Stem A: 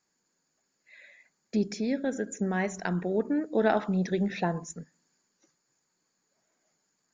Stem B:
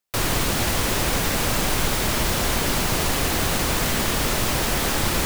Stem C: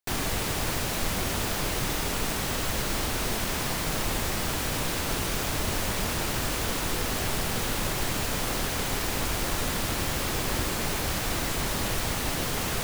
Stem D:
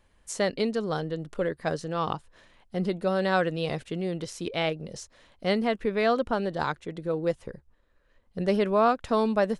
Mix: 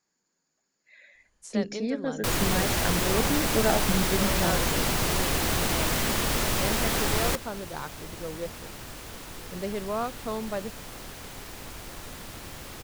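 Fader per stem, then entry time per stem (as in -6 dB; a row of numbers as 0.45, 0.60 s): -1.0, -4.0, -12.5, -8.5 dB; 0.00, 2.10, 2.45, 1.15 s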